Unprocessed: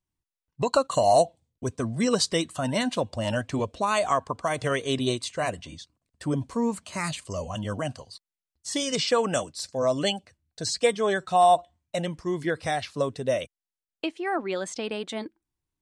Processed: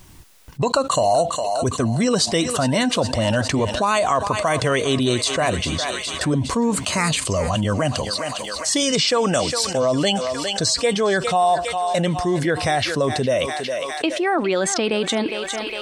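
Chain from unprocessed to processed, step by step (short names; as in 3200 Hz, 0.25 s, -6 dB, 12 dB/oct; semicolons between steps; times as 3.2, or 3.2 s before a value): on a send: thinning echo 0.408 s, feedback 53%, high-pass 590 Hz, level -16 dB; on the sum: fast leveller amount 70%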